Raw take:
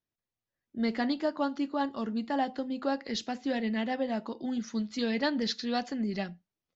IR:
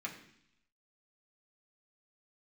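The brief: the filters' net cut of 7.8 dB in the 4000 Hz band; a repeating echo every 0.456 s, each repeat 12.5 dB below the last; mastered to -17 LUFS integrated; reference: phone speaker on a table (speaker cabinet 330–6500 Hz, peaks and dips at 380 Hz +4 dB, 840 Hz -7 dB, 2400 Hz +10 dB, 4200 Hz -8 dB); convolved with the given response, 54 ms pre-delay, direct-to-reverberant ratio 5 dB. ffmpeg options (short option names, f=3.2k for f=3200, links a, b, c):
-filter_complex "[0:a]equalizer=f=4k:t=o:g=-7,aecho=1:1:456|912|1368:0.237|0.0569|0.0137,asplit=2[a][b];[1:a]atrim=start_sample=2205,adelay=54[c];[b][c]afir=irnorm=-1:irlink=0,volume=-5.5dB[d];[a][d]amix=inputs=2:normalize=0,highpass=f=330:w=0.5412,highpass=f=330:w=1.3066,equalizer=f=380:t=q:w=4:g=4,equalizer=f=840:t=q:w=4:g=-7,equalizer=f=2.4k:t=q:w=4:g=10,equalizer=f=4.2k:t=q:w=4:g=-8,lowpass=f=6.5k:w=0.5412,lowpass=f=6.5k:w=1.3066,volume=18dB"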